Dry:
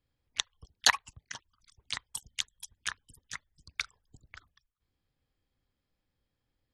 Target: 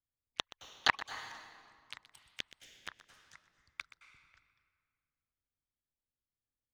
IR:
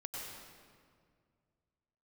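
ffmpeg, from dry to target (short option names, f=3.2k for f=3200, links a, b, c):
-filter_complex "[0:a]aeval=exprs='0.596*(cos(1*acos(clip(val(0)/0.596,-1,1)))-cos(1*PI/2))+0.075*(cos(7*acos(clip(val(0)/0.596,-1,1)))-cos(7*PI/2))':c=same,asplit=2[a][b];[1:a]atrim=start_sample=2205,highshelf=f=4.8k:g=-11,adelay=124[c];[b][c]afir=irnorm=-1:irlink=0,volume=-10dB[d];[a][d]amix=inputs=2:normalize=0,acrossover=split=3800[e][f];[f]acompressor=threshold=-53dB:ratio=4:attack=1:release=60[g];[e][g]amix=inputs=2:normalize=0"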